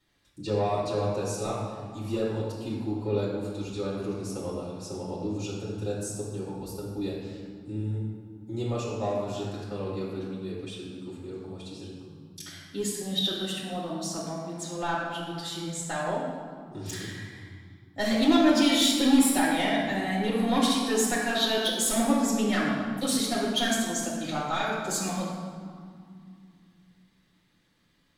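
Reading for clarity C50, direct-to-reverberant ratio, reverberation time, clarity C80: 0.0 dB, -8.0 dB, 2.4 s, 2.5 dB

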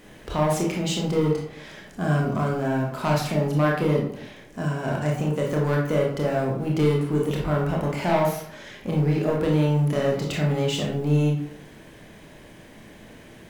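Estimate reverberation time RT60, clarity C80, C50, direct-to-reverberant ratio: 0.65 s, 7.5 dB, 3.5 dB, -2.0 dB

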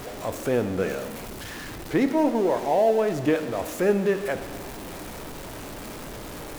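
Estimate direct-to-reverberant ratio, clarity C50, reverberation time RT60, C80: 8.5 dB, 10.5 dB, 1.5 s, 11.5 dB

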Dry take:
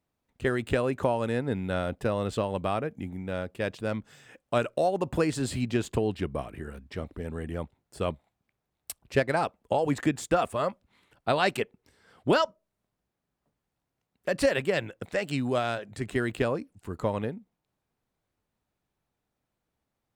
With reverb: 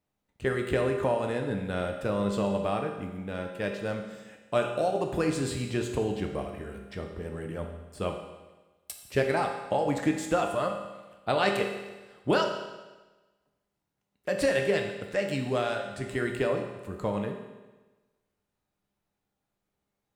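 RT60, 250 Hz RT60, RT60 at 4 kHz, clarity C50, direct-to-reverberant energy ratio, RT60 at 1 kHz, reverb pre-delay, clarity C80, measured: 1.2 s, 1.2 s, 1.2 s, 5.5 dB, 2.5 dB, 1.2 s, 5 ms, 7.5 dB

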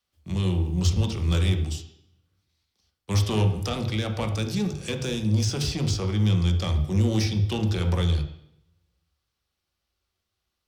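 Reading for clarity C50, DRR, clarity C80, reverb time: 8.5 dB, 5.0 dB, 11.5 dB, 0.70 s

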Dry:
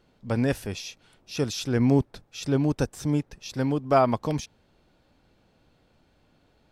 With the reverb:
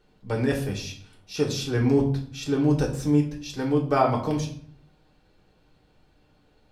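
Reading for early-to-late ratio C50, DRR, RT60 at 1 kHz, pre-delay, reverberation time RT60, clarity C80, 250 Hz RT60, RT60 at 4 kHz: 9.5 dB, -1.5 dB, 0.55 s, 3 ms, 0.55 s, 12.5 dB, 0.80 s, 0.40 s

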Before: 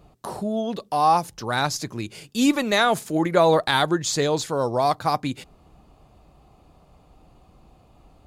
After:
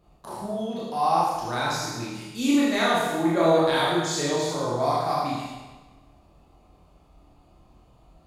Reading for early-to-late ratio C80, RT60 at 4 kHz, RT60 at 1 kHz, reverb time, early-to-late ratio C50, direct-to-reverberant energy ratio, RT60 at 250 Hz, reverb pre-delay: 2.0 dB, 1.2 s, 1.2 s, 1.2 s, -1.0 dB, -7.0 dB, 1.3 s, 25 ms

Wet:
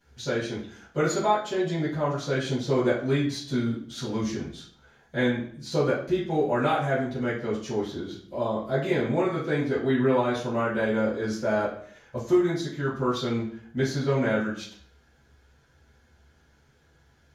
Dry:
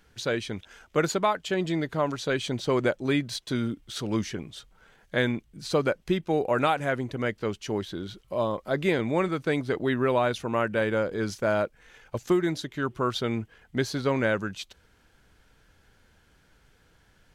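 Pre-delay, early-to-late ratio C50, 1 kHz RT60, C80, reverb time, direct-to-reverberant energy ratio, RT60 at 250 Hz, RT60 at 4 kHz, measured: 3 ms, 4.5 dB, 0.55 s, 9.5 dB, 0.55 s, -14.5 dB, 0.65 s, 0.50 s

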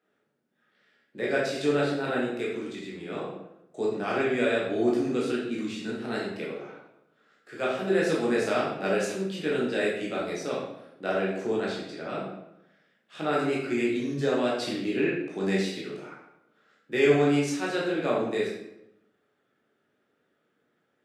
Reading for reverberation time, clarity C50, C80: 0.85 s, 2.0 dB, 5.5 dB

